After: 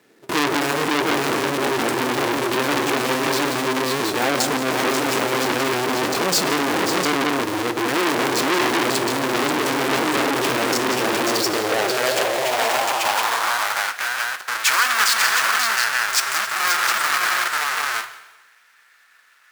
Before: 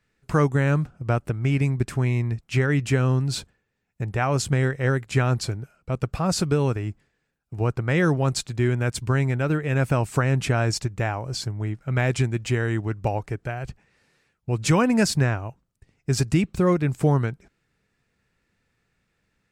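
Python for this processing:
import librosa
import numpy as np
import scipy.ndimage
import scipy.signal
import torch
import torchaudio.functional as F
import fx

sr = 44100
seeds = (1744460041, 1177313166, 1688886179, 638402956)

p1 = fx.halfwave_hold(x, sr)
p2 = fx.echo_multitap(p1, sr, ms=(176, 184, 268, 538, 711), db=(-11.0, -17.0, -19.5, -4.5, -5.5))
p3 = fx.fold_sine(p2, sr, drive_db=18, ceiling_db=-3.5)
p4 = p2 + F.gain(torch.from_numpy(p3), -12.0).numpy()
p5 = fx.rev_plate(p4, sr, seeds[0], rt60_s=1.1, hf_ratio=1.0, predelay_ms=0, drr_db=10.5)
p6 = fx.filter_sweep_highpass(p5, sr, from_hz=330.0, to_hz=1400.0, start_s=11.3, end_s=13.9, q=2.3)
p7 = fx.transformer_sat(p6, sr, knee_hz=3600.0)
y = F.gain(torch.from_numpy(p7), -1.0).numpy()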